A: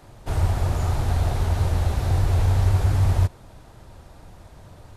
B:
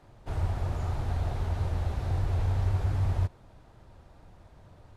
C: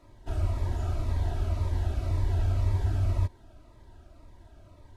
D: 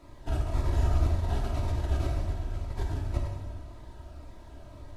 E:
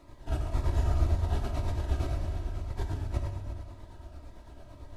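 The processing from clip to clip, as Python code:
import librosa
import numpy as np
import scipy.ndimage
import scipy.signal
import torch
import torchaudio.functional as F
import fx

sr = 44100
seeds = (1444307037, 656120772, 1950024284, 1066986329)

y1 = fx.high_shelf(x, sr, hz=6100.0, db=-11.5)
y1 = F.gain(torch.from_numpy(y1), -8.0).numpy()
y2 = y1 + 0.62 * np.pad(y1, (int(3.1 * sr / 1000.0), 0))[:len(y1)]
y2 = fx.notch_cascade(y2, sr, direction='falling', hz=1.9)
y3 = fx.over_compress(y2, sr, threshold_db=-29.0, ratio=-0.5)
y3 = fx.rev_plate(y3, sr, seeds[0], rt60_s=1.6, hf_ratio=0.85, predelay_ms=0, drr_db=-0.5)
y4 = y3 * (1.0 - 0.43 / 2.0 + 0.43 / 2.0 * np.cos(2.0 * np.pi * 8.9 * (np.arange(len(y3)) / sr)))
y4 = y4 + 10.0 ** (-12.5 / 20.0) * np.pad(y4, (int(356 * sr / 1000.0), 0))[:len(y4)]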